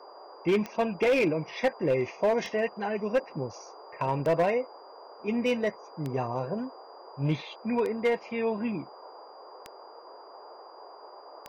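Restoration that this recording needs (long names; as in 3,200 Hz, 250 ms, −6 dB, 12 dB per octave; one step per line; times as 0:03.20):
clipped peaks rebuilt −19 dBFS
click removal
notch filter 4,800 Hz, Q 30
noise reduction from a noise print 25 dB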